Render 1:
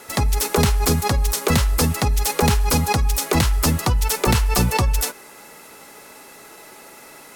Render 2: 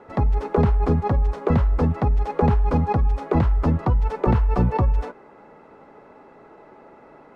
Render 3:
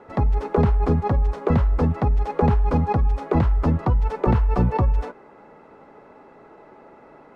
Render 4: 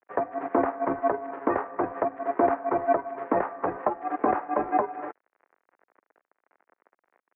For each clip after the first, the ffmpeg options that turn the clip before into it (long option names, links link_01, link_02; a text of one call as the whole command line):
ffmpeg -i in.wav -af "lowpass=1000" out.wav
ffmpeg -i in.wav -af anull out.wav
ffmpeg -i in.wav -af "aeval=exprs='0.422*(cos(1*acos(clip(val(0)/0.422,-1,1)))-cos(1*PI/2))+0.0119*(cos(6*acos(clip(val(0)/0.422,-1,1)))-cos(6*PI/2))':channel_layout=same,aeval=exprs='sgn(val(0))*max(abs(val(0))-0.00944,0)':channel_layout=same,highpass=frequency=530:width_type=q:width=0.5412,highpass=frequency=530:width_type=q:width=1.307,lowpass=frequency=2100:width_type=q:width=0.5176,lowpass=frequency=2100:width_type=q:width=0.7071,lowpass=frequency=2100:width_type=q:width=1.932,afreqshift=-140,volume=4dB" out.wav